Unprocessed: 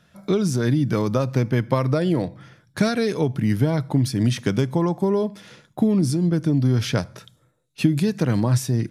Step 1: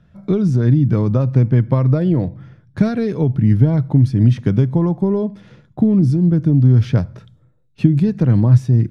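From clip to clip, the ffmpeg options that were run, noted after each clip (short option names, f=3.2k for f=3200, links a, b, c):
-af "aemphasis=mode=reproduction:type=riaa,volume=-2.5dB"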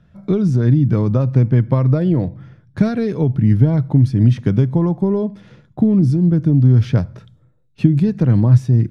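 -af anull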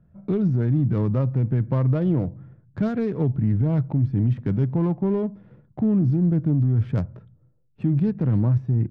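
-af "alimiter=limit=-9dB:level=0:latency=1:release=13,adynamicsmooth=sensitivity=1.5:basefreq=1.1k,volume=-5dB"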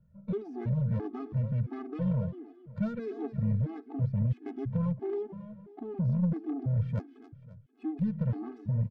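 -af "aecho=1:1:266|532|798|1064:0.266|0.0984|0.0364|0.0135,aeval=exprs='0.266*(cos(1*acos(clip(val(0)/0.266,-1,1)))-cos(1*PI/2))+0.075*(cos(2*acos(clip(val(0)/0.266,-1,1)))-cos(2*PI/2))+0.0335*(cos(4*acos(clip(val(0)/0.266,-1,1)))-cos(4*PI/2))+0.0188*(cos(5*acos(clip(val(0)/0.266,-1,1)))-cos(5*PI/2))+0.00944*(cos(7*acos(clip(val(0)/0.266,-1,1)))-cos(7*PI/2))':c=same,afftfilt=real='re*gt(sin(2*PI*1.5*pts/sr)*(1-2*mod(floor(b*sr/1024/220),2)),0)':imag='im*gt(sin(2*PI*1.5*pts/sr)*(1-2*mod(floor(b*sr/1024/220),2)),0)':win_size=1024:overlap=0.75,volume=-7.5dB"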